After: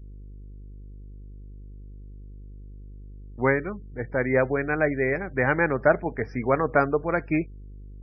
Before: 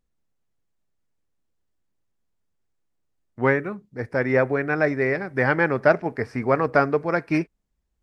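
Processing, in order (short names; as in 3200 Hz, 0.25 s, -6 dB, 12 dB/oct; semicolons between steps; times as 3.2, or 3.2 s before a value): buzz 50 Hz, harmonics 15, -40 dBFS -9 dB/oct; spectral gate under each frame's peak -30 dB strong; gain -2 dB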